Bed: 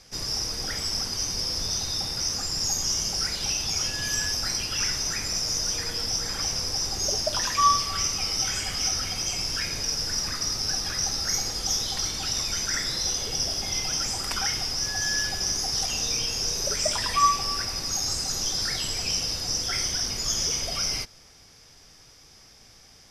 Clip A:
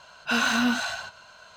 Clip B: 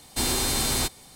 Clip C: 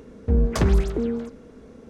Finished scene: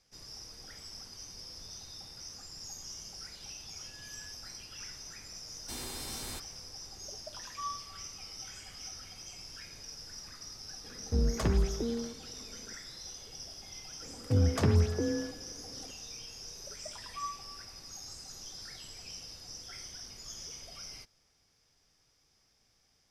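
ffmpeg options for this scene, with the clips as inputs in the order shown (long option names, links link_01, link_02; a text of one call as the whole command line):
ffmpeg -i bed.wav -i cue0.wav -i cue1.wav -i cue2.wav -filter_complex "[3:a]asplit=2[link_01][link_02];[0:a]volume=-18.5dB[link_03];[link_02]afreqshift=32[link_04];[2:a]atrim=end=1.15,asetpts=PTS-STARTPTS,volume=-16.5dB,afade=type=in:duration=0.004:curve=hsin,afade=type=out:start_time=1.146:duration=0.004:curve=hsin,adelay=5520[link_05];[link_01]atrim=end=1.89,asetpts=PTS-STARTPTS,volume=-9dB,afade=type=in:duration=0.004:curve=hsin,afade=type=out:start_time=1.886:duration=0.004:curve=hsin,adelay=10840[link_06];[link_04]atrim=end=1.89,asetpts=PTS-STARTPTS,volume=-7dB,afade=type=in:duration=0.004:curve=hsin,afade=type=out:start_time=1.886:duration=0.004:curve=hsin,adelay=14020[link_07];[link_03][link_05][link_06][link_07]amix=inputs=4:normalize=0" out.wav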